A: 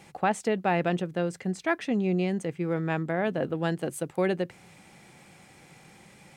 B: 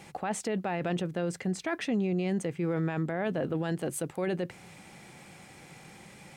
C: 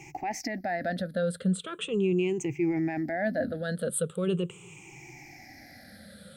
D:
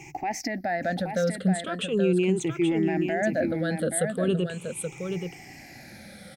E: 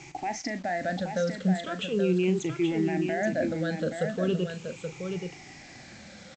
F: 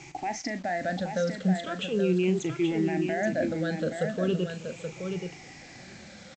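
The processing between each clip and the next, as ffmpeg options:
-af "alimiter=level_in=0.5dB:limit=-24dB:level=0:latency=1:release=19,volume=-0.5dB,volume=2.5dB"
-af "afftfilt=real='re*pow(10,23/40*sin(2*PI*(0.71*log(max(b,1)*sr/1024/100)/log(2)-(-0.4)*(pts-256)/sr)))':imag='im*pow(10,23/40*sin(2*PI*(0.71*log(max(b,1)*sr/1024/100)/log(2)-(-0.4)*(pts-256)/sr)))':win_size=1024:overlap=0.75,equalizer=f=1k:w=2.2:g=-9.5,volume=-3dB"
-af "aecho=1:1:827:0.473,volume=3dB"
-filter_complex "[0:a]aresample=16000,acrusher=bits=7:mix=0:aa=0.000001,aresample=44100,asplit=2[a][b];[b]adelay=38,volume=-11.5dB[c];[a][c]amix=inputs=2:normalize=0,volume=-2.5dB"
-af "aecho=1:1:780:0.0794"

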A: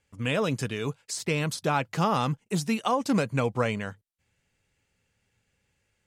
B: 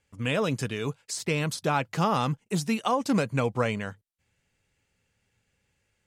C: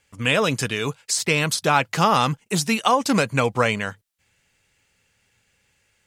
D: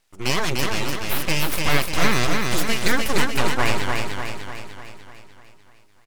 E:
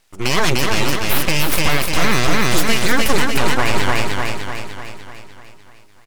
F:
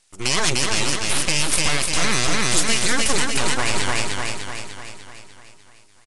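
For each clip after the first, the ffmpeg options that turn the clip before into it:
-af anull
-af "tiltshelf=f=740:g=-4,volume=7dB"
-filter_complex "[0:a]aeval=exprs='abs(val(0))':c=same,asplit=2[a][b];[b]aecho=0:1:298|596|894|1192|1490|1788|2086|2384:0.668|0.368|0.202|0.111|0.0612|0.0336|0.0185|0.0102[c];[a][c]amix=inputs=2:normalize=0"
-af "alimiter=level_in=9dB:limit=-1dB:release=50:level=0:latency=1,volume=-1.5dB"
-af "aemphasis=mode=production:type=75kf,aresample=22050,aresample=44100,volume=-6.5dB"

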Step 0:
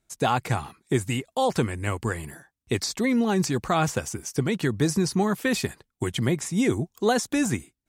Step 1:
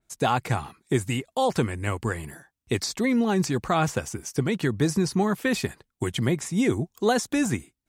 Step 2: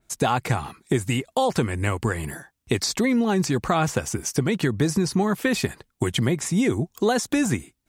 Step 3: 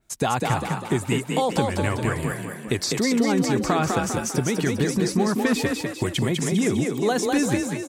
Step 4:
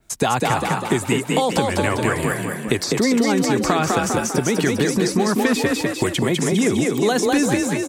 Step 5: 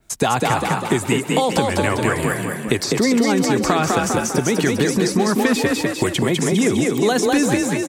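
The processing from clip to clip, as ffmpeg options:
-af "adynamicequalizer=threshold=0.00708:dfrequency=3800:dqfactor=0.7:tfrequency=3800:tqfactor=0.7:attack=5:release=100:ratio=0.375:range=1.5:mode=cutabove:tftype=highshelf"
-af "acompressor=threshold=-29dB:ratio=2.5,volume=8dB"
-filter_complex "[0:a]asplit=8[a][b][c][d][e][f][g][h];[b]adelay=200,afreqshift=32,volume=-3.5dB[i];[c]adelay=400,afreqshift=64,volume=-9.5dB[j];[d]adelay=600,afreqshift=96,volume=-15.5dB[k];[e]adelay=800,afreqshift=128,volume=-21.6dB[l];[f]adelay=1000,afreqshift=160,volume=-27.6dB[m];[g]adelay=1200,afreqshift=192,volume=-33.6dB[n];[h]adelay=1400,afreqshift=224,volume=-39.6dB[o];[a][i][j][k][l][m][n][o]amix=inputs=8:normalize=0,volume=-1.5dB"
-filter_complex "[0:a]acrossover=split=230|1700[a][b][c];[a]acompressor=threshold=-35dB:ratio=4[d];[b]acompressor=threshold=-25dB:ratio=4[e];[c]acompressor=threshold=-33dB:ratio=4[f];[d][e][f]amix=inputs=3:normalize=0,volume=8dB"
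-af "aecho=1:1:135:0.0891,volume=1dB"

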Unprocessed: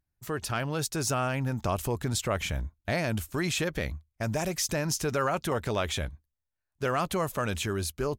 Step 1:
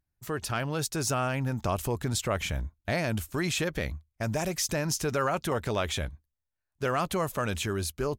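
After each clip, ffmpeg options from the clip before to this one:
-af anull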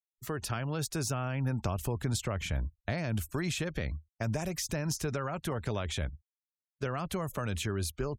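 -filter_complex "[0:a]acrossover=split=190[a][b];[b]acompressor=threshold=-33dB:ratio=5[c];[a][c]amix=inputs=2:normalize=0,afftfilt=real='re*gte(hypot(re,im),0.00251)':imag='im*gte(hypot(re,im),0.00251)':win_size=1024:overlap=0.75"

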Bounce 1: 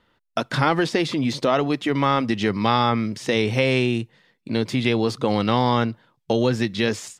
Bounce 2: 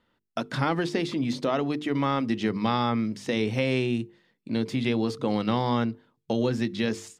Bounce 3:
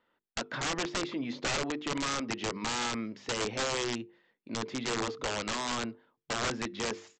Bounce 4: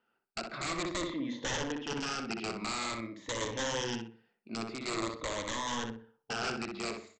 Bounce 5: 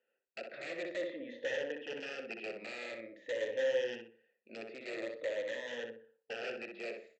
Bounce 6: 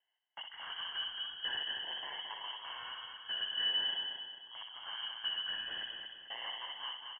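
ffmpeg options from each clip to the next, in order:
-af "equalizer=f=230:t=o:w=1.5:g=5.5,bandreject=f=50:t=h:w=6,bandreject=f=100:t=h:w=6,bandreject=f=150:t=h:w=6,bandreject=f=200:t=h:w=6,bandreject=f=250:t=h:w=6,bandreject=f=300:t=h:w=6,bandreject=f=350:t=h:w=6,bandreject=f=400:t=h:w=6,bandreject=f=450:t=h:w=6,volume=-7.5dB"
-af "bass=f=250:g=-14,treble=f=4k:g=-13,aresample=16000,aeval=exprs='(mod(15.8*val(0)+1,2)-1)/15.8':c=same,aresample=44100,volume=-1.5dB"
-filter_complex "[0:a]afftfilt=real='re*pow(10,11/40*sin(2*PI*(1.1*log(max(b,1)*sr/1024/100)/log(2)-(-0.47)*(pts-256)/sr)))':imag='im*pow(10,11/40*sin(2*PI*(1.1*log(max(b,1)*sr/1024/100)/log(2)-(-0.47)*(pts-256)/sr)))':win_size=1024:overlap=0.75,asplit=2[a][b];[b]adelay=62,lowpass=f=2.3k:p=1,volume=-4dB,asplit=2[c][d];[d]adelay=62,lowpass=f=2.3k:p=1,volume=0.32,asplit=2[e][f];[f]adelay=62,lowpass=f=2.3k:p=1,volume=0.32,asplit=2[g][h];[h]adelay=62,lowpass=f=2.3k:p=1,volume=0.32[i];[a][c][e][g][i]amix=inputs=5:normalize=0,volume=-5dB"
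-filter_complex "[0:a]asplit=3[a][b][c];[a]bandpass=f=530:t=q:w=8,volume=0dB[d];[b]bandpass=f=1.84k:t=q:w=8,volume=-6dB[e];[c]bandpass=f=2.48k:t=q:w=8,volume=-9dB[f];[d][e][f]amix=inputs=3:normalize=0,volume=7.5dB"
-filter_complex "[0:a]asplit=2[a][b];[b]aecho=0:1:222|444|666|888|1110:0.562|0.236|0.0992|0.0417|0.0175[c];[a][c]amix=inputs=2:normalize=0,lowpass=f=3k:t=q:w=0.5098,lowpass=f=3k:t=q:w=0.6013,lowpass=f=3k:t=q:w=0.9,lowpass=f=3k:t=q:w=2.563,afreqshift=-3500,volume=-2dB"

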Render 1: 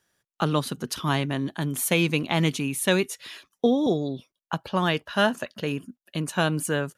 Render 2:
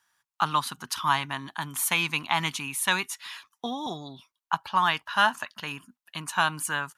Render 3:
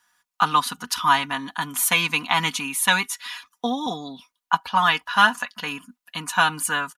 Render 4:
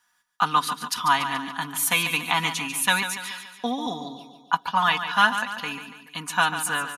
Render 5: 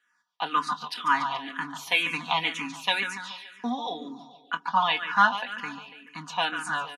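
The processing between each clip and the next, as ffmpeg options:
-af "lowshelf=f=690:t=q:w=3:g=-11"
-af "aecho=1:1:4.1:0.68,volume=4dB"
-af "aecho=1:1:143|286|429|572|715:0.316|0.158|0.0791|0.0395|0.0198,volume=-2.5dB"
-filter_complex "[0:a]highpass=180,lowpass=4.7k,asplit=2[a][b];[b]adelay=25,volume=-13dB[c];[a][c]amix=inputs=2:normalize=0,asplit=2[d][e];[e]afreqshift=-2[f];[d][f]amix=inputs=2:normalize=1"

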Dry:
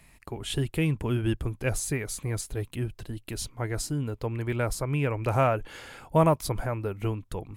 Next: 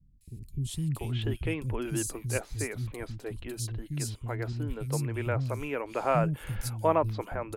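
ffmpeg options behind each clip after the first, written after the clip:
-filter_complex "[0:a]acrossover=split=230|3700[a][b][c];[c]adelay=210[d];[b]adelay=690[e];[a][e][d]amix=inputs=3:normalize=0,volume=-2dB"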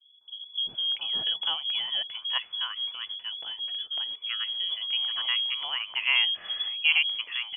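-af "lowpass=f=2.9k:t=q:w=0.5098,lowpass=f=2.9k:t=q:w=0.6013,lowpass=f=2.9k:t=q:w=0.9,lowpass=f=2.9k:t=q:w=2.563,afreqshift=-3400,volume=1.5dB"

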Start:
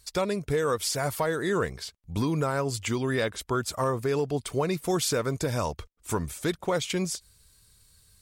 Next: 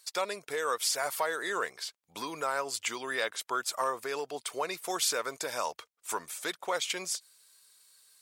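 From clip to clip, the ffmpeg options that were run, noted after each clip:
-af "highpass=700"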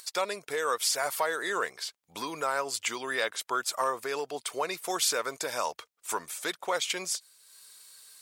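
-af "acompressor=mode=upward:threshold=-46dB:ratio=2.5,volume=2dB"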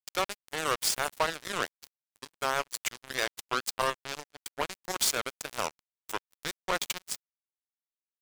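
-af "acrusher=bits=3:mix=0:aa=0.5"

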